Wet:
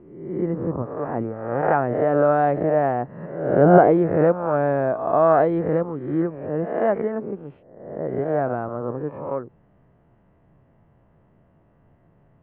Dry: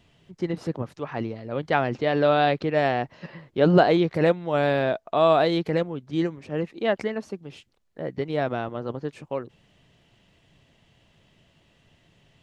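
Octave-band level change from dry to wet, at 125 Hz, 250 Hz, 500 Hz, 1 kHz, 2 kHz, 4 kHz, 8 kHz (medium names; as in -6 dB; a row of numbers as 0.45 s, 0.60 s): +2.5 dB, +3.0 dB, +4.0 dB, +4.0 dB, -2.0 dB, under -20 dB, no reading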